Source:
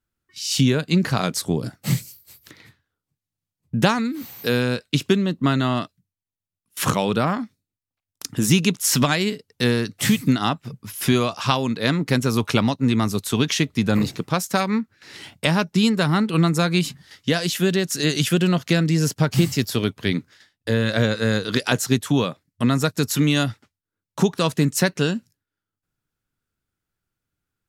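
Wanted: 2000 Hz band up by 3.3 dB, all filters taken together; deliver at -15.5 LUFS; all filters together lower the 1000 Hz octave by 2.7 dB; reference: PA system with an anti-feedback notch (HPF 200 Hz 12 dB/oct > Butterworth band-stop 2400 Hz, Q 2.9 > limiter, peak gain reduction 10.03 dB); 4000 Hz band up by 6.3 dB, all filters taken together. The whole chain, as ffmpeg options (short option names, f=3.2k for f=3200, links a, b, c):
-af "highpass=200,asuperstop=centerf=2400:order=8:qfactor=2.9,equalizer=f=1k:t=o:g=-7.5,equalizer=f=2k:t=o:g=9,equalizer=f=4k:t=o:g=5.5,volume=8dB,alimiter=limit=-3dB:level=0:latency=1"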